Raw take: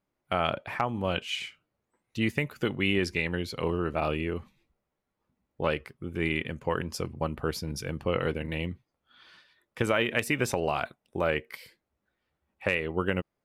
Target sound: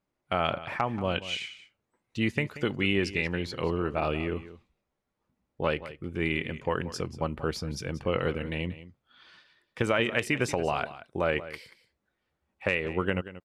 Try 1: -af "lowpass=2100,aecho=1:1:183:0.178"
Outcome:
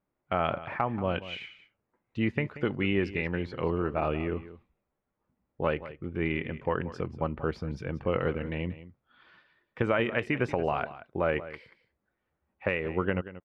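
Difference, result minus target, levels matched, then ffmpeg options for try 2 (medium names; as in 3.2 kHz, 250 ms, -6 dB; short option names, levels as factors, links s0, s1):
8 kHz band -19.0 dB
-af "lowpass=8400,aecho=1:1:183:0.178"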